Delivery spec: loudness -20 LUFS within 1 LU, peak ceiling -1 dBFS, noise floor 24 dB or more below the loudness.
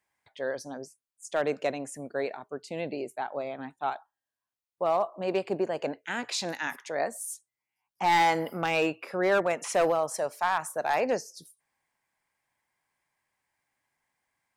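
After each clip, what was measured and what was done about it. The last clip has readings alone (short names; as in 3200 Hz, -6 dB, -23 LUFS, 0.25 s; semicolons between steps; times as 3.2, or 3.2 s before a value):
clipped 0.5%; flat tops at -18.0 dBFS; loudness -29.5 LUFS; peak -18.0 dBFS; loudness target -20.0 LUFS
-> clip repair -18 dBFS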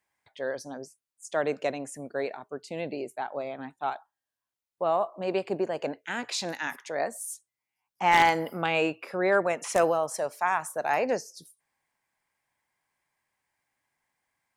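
clipped 0.0%; loudness -29.0 LUFS; peak -9.0 dBFS; loudness target -20.0 LUFS
-> gain +9 dB; limiter -1 dBFS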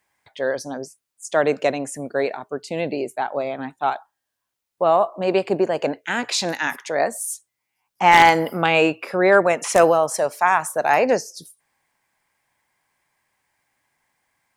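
loudness -20.0 LUFS; peak -1.0 dBFS; noise floor -81 dBFS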